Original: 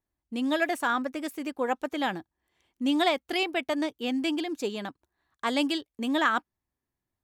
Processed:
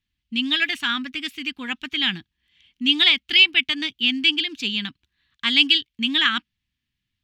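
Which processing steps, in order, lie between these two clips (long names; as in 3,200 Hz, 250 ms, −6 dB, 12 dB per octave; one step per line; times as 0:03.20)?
drawn EQ curve 220 Hz 0 dB, 560 Hz −27 dB, 3,000 Hz +13 dB, 9,200 Hz −11 dB
level +6.5 dB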